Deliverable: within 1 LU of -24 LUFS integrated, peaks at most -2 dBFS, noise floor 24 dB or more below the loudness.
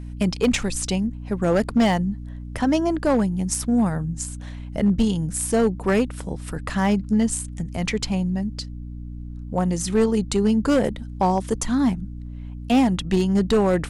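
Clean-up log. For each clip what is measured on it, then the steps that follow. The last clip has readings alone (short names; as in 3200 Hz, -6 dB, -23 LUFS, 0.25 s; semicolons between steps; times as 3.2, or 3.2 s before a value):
clipped 0.9%; flat tops at -12.5 dBFS; hum 60 Hz; harmonics up to 300 Hz; hum level -32 dBFS; loudness -22.5 LUFS; peak -12.5 dBFS; loudness target -24.0 LUFS
-> clip repair -12.5 dBFS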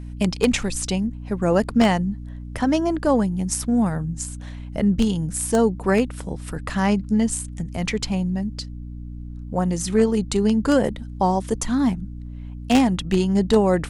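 clipped 0.0%; hum 60 Hz; harmonics up to 300 Hz; hum level -32 dBFS
-> notches 60/120/180/240/300 Hz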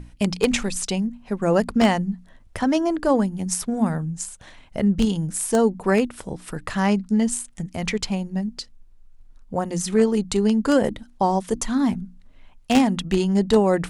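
hum none; loudness -22.5 LUFS; peak -3.0 dBFS; loudness target -24.0 LUFS
-> gain -1.5 dB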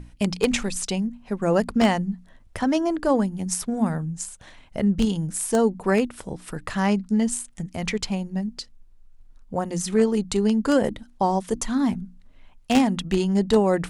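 loudness -24.0 LUFS; peak -4.5 dBFS; noise floor -52 dBFS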